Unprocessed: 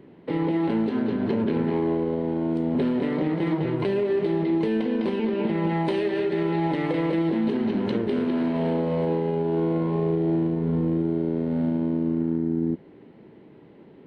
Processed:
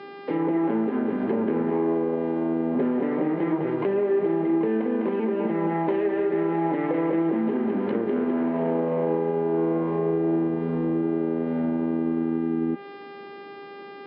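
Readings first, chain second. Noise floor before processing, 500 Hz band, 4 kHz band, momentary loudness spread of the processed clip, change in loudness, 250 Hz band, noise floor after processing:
−49 dBFS, +1.5 dB, can't be measured, 3 LU, 0.0 dB, −0.5 dB, −41 dBFS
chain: hum with harmonics 400 Hz, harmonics 13, −42 dBFS −5 dB per octave
three-way crossover with the lows and the highs turned down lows −18 dB, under 190 Hz, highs −15 dB, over 2,900 Hz
treble cut that deepens with the level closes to 1,900 Hz, closed at −22.5 dBFS
level +1.5 dB

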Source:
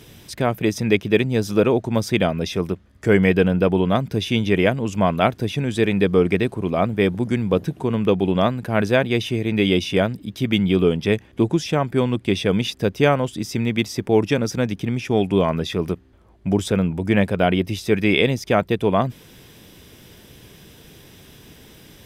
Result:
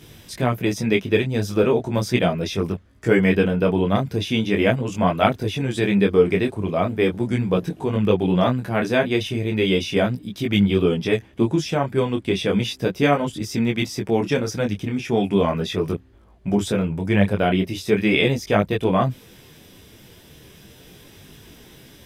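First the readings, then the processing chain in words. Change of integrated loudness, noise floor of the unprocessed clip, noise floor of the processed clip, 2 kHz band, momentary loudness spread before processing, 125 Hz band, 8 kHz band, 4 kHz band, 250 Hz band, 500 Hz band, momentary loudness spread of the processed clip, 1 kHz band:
−1.0 dB, −49 dBFS, −48 dBFS, −0.5 dB, 6 LU, −1.0 dB, −0.5 dB, −0.5 dB, −0.5 dB, −1.0 dB, 6 LU, −0.5 dB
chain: micro pitch shift up and down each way 13 cents
level +3 dB

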